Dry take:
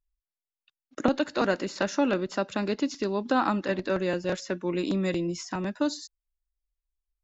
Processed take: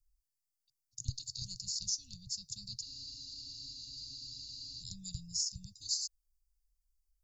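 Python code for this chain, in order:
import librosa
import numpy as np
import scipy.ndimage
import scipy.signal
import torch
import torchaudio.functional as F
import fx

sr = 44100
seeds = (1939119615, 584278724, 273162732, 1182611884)

y = scipy.signal.sosfilt(scipy.signal.cheby1(5, 1.0, [130.0, 4600.0], 'bandstop', fs=sr, output='sos'), x)
y = fx.spec_freeze(y, sr, seeds[0], at_s=2.85, hold_s=1.96)
y = F.gain(torch.from_numpy(y), 6.5).numpy()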